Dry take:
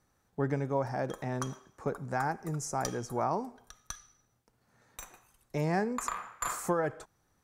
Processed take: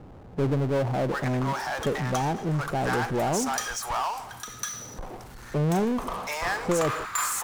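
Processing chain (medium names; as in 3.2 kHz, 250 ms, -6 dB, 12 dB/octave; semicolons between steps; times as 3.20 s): bands offset in time lows, highs 730 ms, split 870 Hz; power-law waveshaper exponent 0.5; loudspeaker Doppler distortion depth 0.14 ms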